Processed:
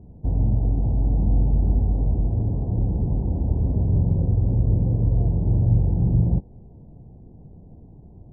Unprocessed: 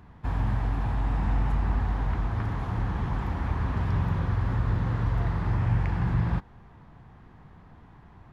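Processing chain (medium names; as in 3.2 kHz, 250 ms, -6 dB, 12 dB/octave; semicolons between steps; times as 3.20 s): inverse Chebyshev low-pass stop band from 1.2 kHz, stop band 40 dB; trim +6.5 dB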